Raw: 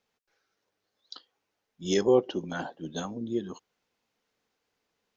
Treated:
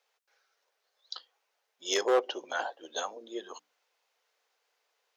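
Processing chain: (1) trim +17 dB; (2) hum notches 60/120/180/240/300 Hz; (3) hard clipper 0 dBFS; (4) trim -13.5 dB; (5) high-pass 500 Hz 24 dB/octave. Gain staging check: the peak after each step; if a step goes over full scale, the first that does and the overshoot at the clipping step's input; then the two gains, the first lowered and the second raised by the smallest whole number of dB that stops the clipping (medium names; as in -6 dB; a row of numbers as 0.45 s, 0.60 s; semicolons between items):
+5.5 dBFS, +5.5 dBFS, 0.0 dBFS, -13.5 dBFS, -14.0 dBFS; step 1, 5.5 dB; step 1 +11 dB, step 4 -7.5 dB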